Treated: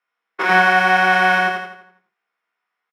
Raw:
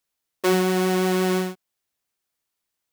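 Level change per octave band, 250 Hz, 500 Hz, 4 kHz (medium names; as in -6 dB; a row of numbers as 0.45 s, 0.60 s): -5.5 dB, -2.0 dB, +6.0 dB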